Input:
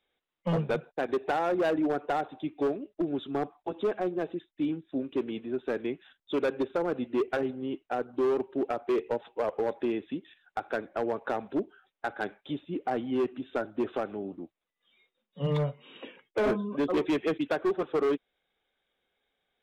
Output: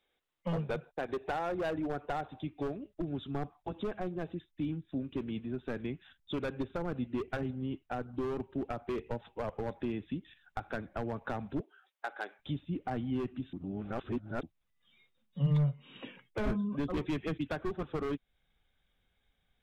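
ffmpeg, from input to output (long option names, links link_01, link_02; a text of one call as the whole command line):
ffmpeg -i in.wav -filter_complex "[0:a]asettb=1/sr,asplit=3[link_01][link_02][link_03];[link_01]atrim=end=11.604[link_04];[link_02]atrim=start=11.6:end=12.39,asetpts=PTS-STARTPTS,afade=type=in:duration=0.004:curve=qsin,afade=type=out:start_time=0.786:duration=0.004:curve=qsin,highpass=frequency=390:width=0.5412,highpass=frequency=390:width=1.3066[link_05];[link_03]atrim=start=12.386[link_06];[link_04][link_05]acrossfade=duration=0.004:curve1=hsin:curve2=qsin[link_07];[link_07][link_06]acrossfade=duration=0.004:curve1=qsin:curve2=hsin,asplit=3[link_08][link_09][link_10];[link_08]atrim=end=13.532[link_11];[link_09]atrim=start=13.528:end=14.432,asetpts=PTS-STARTPTS,areverse[link_12];[link_10]atrim=start=14.428[link_13];[link_11][link_12]acrossfade=duration=0.004:curve1=hsin:curve2=hsin[link_14];[link_14][link_13]acrossfade=duration=0.004:curve1=hsin:curve2=hsin,asubboost=boost=9.5:cutoff=130,acompressor=threshold=-41dB:ratio=1.5" out.wav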